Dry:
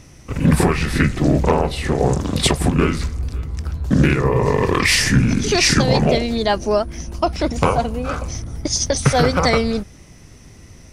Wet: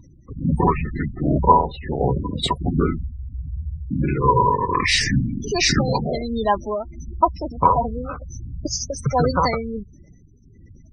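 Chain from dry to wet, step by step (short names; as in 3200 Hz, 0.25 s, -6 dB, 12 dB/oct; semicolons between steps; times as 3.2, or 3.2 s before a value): tremolo 1.4 Hz, depth 52%; spectral gate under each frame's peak -15 dB strong; small resonant body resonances 980/3800 Hz, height 18 dB, ringing for 45 ms; gain -2.5 dB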